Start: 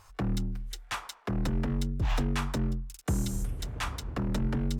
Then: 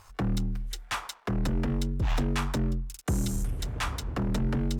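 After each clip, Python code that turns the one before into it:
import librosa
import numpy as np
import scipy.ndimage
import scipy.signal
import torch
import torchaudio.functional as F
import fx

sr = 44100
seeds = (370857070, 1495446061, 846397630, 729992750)

y = fx.leveller(x, sr, passes=1)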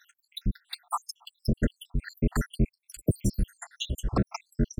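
y = fx.spec_dropout(x, sr, seeds[0], share_pct=84)
y = y * librosa.db_to_amplitude(6.5)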